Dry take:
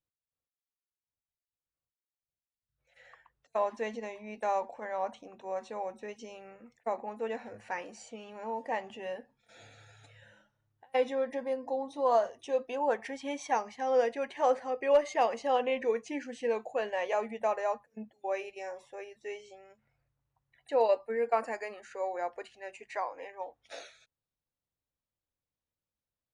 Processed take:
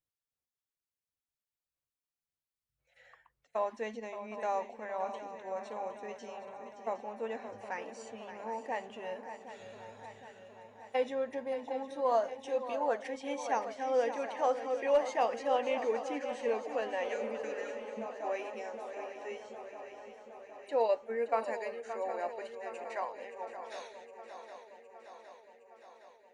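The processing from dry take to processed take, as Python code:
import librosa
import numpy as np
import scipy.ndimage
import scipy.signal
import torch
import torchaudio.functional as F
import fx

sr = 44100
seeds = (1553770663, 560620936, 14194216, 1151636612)

y = fx.echo_swing(x, sr, ms=763, ratio=3, feedback_pct=64, wet_db=-11.0)
y = fx.spec_repair(y, sr, seeds[0], start_s=17.12, length_s=0.81, low_hz=420.0, high_hz=1300.0, source='both')
y = y * librosa.db_to_amplitude(-3.0)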